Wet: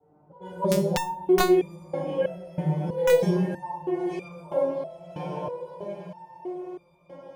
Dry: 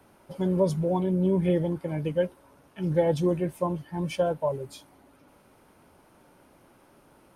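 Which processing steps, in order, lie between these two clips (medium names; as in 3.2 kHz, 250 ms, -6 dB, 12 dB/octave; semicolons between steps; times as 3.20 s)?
level-controlled noise filter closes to 450 Hz, open at -23.5 dBFS; high-pass 54 Hz 12 dB/octave; peaking EQ 760 Hz +9.5 dB 0.9 oct; echo that smears into a reverb 1008 ms, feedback 56%, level -9 dB; reverberation RT60 1.0 s, pre-delay 11 ms, DRR -6.5 dB; chorus 0.52 Hz, delay 19.5 ms, depth 6 ms; hum notches 60/120 Hz; integer overflow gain 3 dB; resonator arpeggio 3.1 Hz 150–1200 Hz; trim +8 dB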